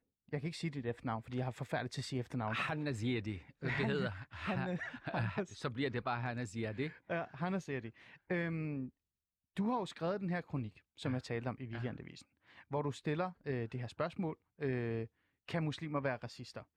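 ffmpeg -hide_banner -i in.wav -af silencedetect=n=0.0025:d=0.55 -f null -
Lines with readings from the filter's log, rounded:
silence_start: 8.89
silence_end: 9.57 | silence_duration: 0.68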